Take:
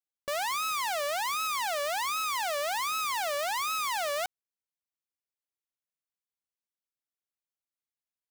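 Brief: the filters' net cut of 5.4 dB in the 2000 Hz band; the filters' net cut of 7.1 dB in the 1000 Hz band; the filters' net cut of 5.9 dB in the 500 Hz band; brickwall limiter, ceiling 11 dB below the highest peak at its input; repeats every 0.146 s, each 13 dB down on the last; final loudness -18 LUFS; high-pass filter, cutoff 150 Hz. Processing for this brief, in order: HPF 150 Hz; bell 500 Hz -4.5 dB; bell 1000 Hz -6.5 dB; bell 2000 Hz -5 dB; limiter -34.5 dBFS; feedback echo 0.146 s, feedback 22%, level -13 dB; gain +26.5 dB

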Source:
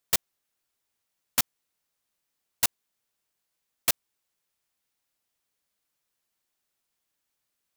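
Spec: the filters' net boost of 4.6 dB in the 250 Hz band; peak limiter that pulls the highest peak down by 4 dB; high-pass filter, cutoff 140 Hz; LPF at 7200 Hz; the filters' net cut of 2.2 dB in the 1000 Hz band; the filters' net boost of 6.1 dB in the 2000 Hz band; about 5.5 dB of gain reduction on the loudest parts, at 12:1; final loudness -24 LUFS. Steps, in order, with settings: HPF 140 Hz; LPF 7200 Hz; bell 250 Hz +6.5 dB; bell 1000 Hz -6.5 dB; bell 2000 Hz +9 dB; compressor 12:1, threshold -26 dBFS; gain +14 dB; limiter -2.5 dBFS

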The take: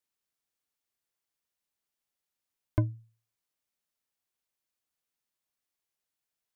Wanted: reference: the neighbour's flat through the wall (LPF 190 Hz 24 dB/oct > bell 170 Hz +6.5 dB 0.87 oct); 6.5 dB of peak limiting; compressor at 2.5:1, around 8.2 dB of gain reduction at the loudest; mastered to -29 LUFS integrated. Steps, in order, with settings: compressor 2.5:1, threshold -33 dBFS; limiter -25 dBFS; LPF 190 Hz 24 dB/oct; bell 170 Hz +6.5 dB 0.87 oct; gain +14 dB

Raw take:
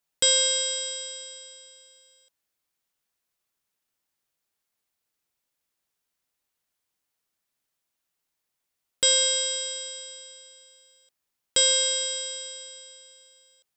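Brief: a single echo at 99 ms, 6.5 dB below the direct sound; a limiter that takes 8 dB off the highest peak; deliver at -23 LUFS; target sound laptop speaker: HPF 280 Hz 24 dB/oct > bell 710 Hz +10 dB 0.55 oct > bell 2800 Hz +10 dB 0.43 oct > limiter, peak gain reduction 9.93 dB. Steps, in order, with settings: limiter -16.5 dBFS; HPF 280 Hz 24 dB/oct; bell 710 Hz +10 dB 0.55 oct; bell 2800 Hz +10 dB 0.43 oct; echo 99 ms -6.5 dB; gain +6 dB; limiter -15.5 dBFS

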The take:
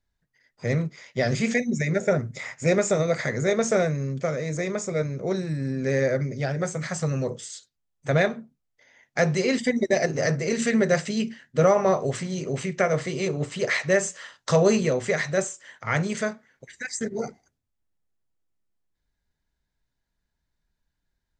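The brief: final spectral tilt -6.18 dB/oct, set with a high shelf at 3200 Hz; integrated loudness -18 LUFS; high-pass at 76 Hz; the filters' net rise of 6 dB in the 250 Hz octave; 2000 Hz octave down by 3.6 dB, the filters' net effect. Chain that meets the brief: HPF 76 Hz; bell 250 Hz +8 dB; bell 2000 Hz -3 dB; high shelf 3200 Hz -4.5 dB; gain +4.5 dB

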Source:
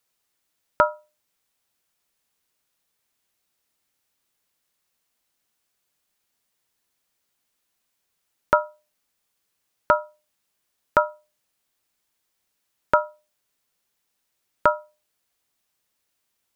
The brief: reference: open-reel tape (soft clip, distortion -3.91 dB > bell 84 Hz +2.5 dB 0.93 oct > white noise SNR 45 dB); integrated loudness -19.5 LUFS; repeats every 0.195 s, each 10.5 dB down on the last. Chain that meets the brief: feedback echo 0.195 s, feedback 30%, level -10.5 dB; soft clip -22.5 dBFS; bell 84 Hz +2.5 dB 0.93 oct; white noise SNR 45 dB; gain +14 dB

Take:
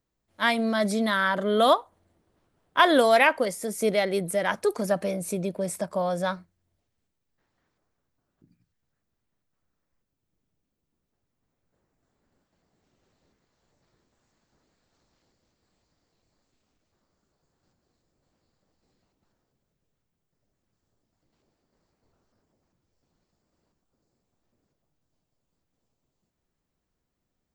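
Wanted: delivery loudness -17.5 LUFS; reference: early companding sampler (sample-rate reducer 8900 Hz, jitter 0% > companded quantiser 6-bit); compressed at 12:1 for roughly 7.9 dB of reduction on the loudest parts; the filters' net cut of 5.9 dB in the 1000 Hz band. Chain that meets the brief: bell 1000 Hz -8.5 dB; compressor 12:1, threshold -25 dBFS; sample-rate reducer 8900 Hz, jitter 0%; companded quantiser 6-bit; gain +13.5 dB

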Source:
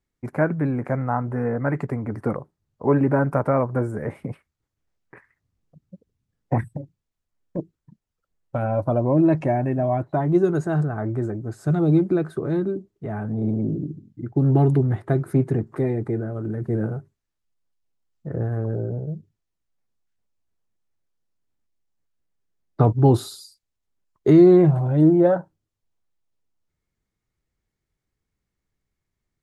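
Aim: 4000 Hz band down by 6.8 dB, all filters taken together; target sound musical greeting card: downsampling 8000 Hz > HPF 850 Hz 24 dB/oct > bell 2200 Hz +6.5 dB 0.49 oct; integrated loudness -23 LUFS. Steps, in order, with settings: bell 4000 Hz -8.5 dB; downsampling 8000 Hz; HPF 850 Hz 24 dB/oct; bell 2200 Hz +6.5 dB 0.49 oct; gain +13.5 dB

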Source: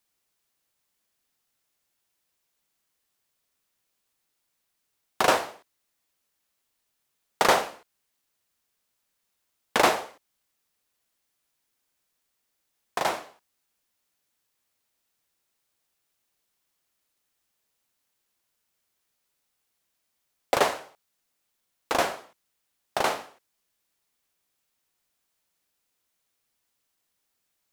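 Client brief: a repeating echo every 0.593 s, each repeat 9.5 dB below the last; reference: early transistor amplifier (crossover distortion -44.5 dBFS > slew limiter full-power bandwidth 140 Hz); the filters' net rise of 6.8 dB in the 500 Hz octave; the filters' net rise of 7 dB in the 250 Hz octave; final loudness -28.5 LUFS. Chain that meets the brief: bell 250 Hz +6.5 dB; bell 500 Hz +7 dB; feedback echo 0.593 s, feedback 33%, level -9.5 dB; crossover distortion -44.5 dBFS; slew limiter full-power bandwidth 140 Hz; gain -1.5 dB

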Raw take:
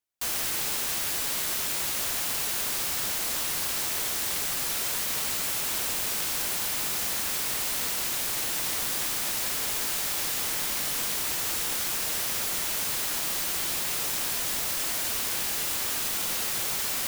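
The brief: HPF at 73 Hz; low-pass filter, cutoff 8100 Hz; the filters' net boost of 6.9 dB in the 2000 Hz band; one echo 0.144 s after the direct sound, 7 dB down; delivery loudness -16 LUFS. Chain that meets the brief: HPF 73 Hz; LPF 8100 Hz; bell 2000 Hz +8.5 dB; echo 0.144 s -7 dB; gain +11.5 dB

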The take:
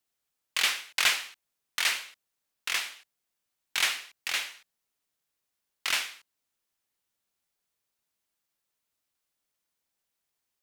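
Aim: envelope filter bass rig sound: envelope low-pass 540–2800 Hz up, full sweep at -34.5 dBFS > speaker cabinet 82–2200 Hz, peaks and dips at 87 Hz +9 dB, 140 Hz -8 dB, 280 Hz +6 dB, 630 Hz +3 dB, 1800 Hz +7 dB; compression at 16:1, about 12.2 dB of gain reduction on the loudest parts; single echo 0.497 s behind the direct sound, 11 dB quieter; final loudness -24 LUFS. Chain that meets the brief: compressor 16:1, threshold -32 dBFS; echo 0.497 s -11 dB; envelope low-pass 540–2800 Hz up, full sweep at -34.5 dBFS; speaker cabinet 82–2200 Hz, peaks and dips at 87 Hz +9 dB, 140 Hz -8 dB, 280 Hz +6 dB, 630 Hz +3 dB, 1800 Hz +7 dB; gain +10.5 dB

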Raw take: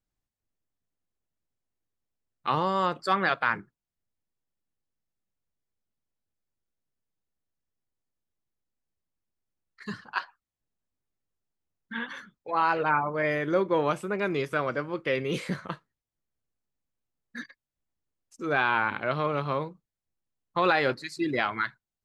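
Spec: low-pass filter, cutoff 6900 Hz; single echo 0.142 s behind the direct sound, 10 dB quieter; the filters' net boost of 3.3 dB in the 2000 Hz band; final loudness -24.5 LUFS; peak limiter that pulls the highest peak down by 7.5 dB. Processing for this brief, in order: LPF 6900 Hz; bell 2000 Hz +4.5 dB; limiter -15.5 dBFS; echo 0.142 s -10 dB; gain +4.5 dB

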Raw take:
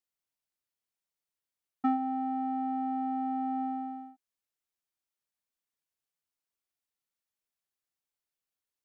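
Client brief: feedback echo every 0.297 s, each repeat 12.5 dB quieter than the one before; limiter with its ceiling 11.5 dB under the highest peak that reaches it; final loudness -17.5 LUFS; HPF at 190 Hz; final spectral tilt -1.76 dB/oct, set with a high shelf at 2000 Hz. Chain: HPF 190 Hz; high shelf 2000 Hz -9 dB; limiter -30 dBFS; feedback echo 0.297 s, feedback 24%, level -12.5 dB; gain +19.5 dB

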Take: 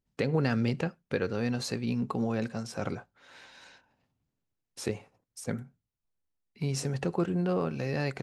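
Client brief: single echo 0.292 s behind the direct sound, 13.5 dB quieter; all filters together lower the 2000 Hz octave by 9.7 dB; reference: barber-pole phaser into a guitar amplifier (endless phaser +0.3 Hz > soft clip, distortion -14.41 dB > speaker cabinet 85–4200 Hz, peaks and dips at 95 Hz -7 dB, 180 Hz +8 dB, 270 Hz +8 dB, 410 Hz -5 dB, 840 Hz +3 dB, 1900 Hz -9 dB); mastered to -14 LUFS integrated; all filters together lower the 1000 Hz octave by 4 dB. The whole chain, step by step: bell 1000 Hz -5.5 dB; bell 2000 Hz -7 dB; echo 0.292 s -13.5 dB; endless phaser +0.3 Hz; soft clip -29.5 dBFS; speaker cabinet 85–4200 Hz, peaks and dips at 95 Hz -7 dB, 180 Hz +8 dB, 270 Hz +8 dB, 410 Hz -5 dB, 840 Hz +3 dB, 1900 Hz -9 dB; gain +21.5 dB

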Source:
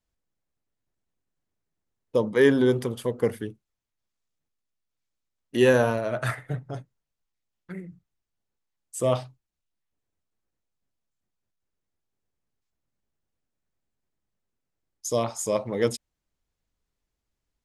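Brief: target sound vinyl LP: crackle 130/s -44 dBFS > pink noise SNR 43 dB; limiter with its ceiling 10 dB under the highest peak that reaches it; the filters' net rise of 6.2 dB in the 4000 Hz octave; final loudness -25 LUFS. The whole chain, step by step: bell 4000 Hz +8.5 dB; limiter -16.5 dBFS; crackle 130/s -44 dBFS; pink noise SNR 43 dB; gain +4.5 dB

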